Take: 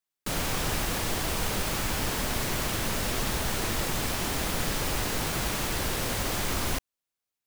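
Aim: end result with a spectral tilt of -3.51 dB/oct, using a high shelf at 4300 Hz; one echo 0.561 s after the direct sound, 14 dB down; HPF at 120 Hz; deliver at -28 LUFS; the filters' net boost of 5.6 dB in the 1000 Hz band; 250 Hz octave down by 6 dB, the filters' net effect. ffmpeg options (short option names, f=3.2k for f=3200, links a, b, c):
-af "highpass=120,equalizer=f=250:t=o:g=-8.5,equalizer=f=1k:t=o:g=8,highshelf=f=4.3k:g=-9,aecho=1:1:561:0.2,volume=2.5dB"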